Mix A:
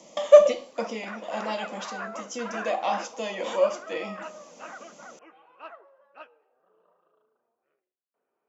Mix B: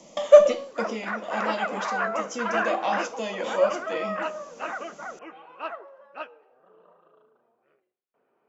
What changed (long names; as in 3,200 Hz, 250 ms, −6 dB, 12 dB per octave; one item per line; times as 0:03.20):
background +9.0 dB
master: add low-shelf EQ 120 Hz +12 dB